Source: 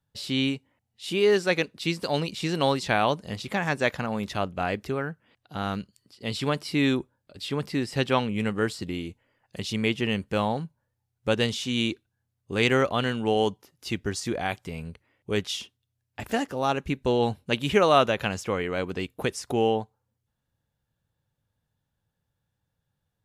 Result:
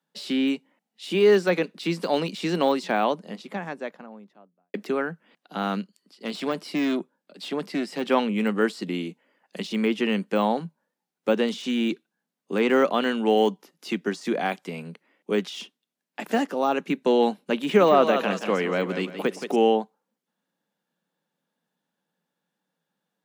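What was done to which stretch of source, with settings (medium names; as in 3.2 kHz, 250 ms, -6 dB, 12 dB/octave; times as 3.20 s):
2.23–4.74 s: studio fade out
5.80–8.05 s: valve stage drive 21 dB, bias 0.55
17.59–19.56 s: modulated delay 172 ms, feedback 36%, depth 58 cents, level -10 dB
whole clip: de-esser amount 95%; steep high-pass 170 Hz 72 dB/octave; treble shelf 6 kHz -5.5 dB; trim +4 dB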